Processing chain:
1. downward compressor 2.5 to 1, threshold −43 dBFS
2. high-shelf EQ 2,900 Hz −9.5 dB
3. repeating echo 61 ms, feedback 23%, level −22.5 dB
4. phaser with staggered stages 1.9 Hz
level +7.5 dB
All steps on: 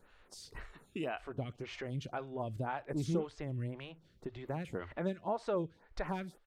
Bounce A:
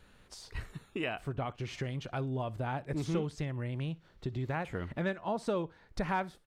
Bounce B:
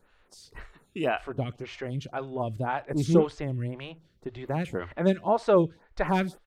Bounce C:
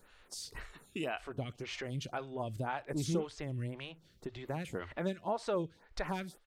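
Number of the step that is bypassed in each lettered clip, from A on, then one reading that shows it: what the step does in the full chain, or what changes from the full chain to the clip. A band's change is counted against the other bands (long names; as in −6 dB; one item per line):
4, 2 kHz band +3.0 dB
1, average gain reduction 8.0 dB
2, 8 kHz band +7.5 dB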